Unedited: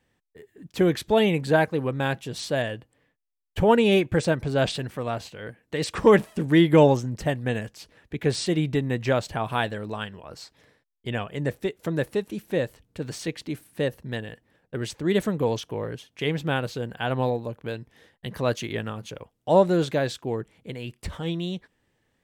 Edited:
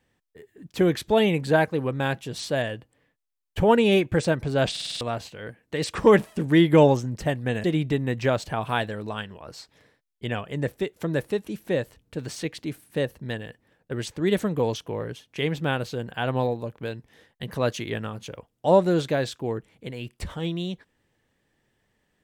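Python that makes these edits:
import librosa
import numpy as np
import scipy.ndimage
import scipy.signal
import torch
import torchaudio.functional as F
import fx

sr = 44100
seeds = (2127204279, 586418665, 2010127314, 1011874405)

y = fx.edit(x, sr, fx.stutter_over(start_s=4.71, slice_s=0.05, count=6),
    fx.cut(start_s=7.64, length_s=0.83), tone=tone)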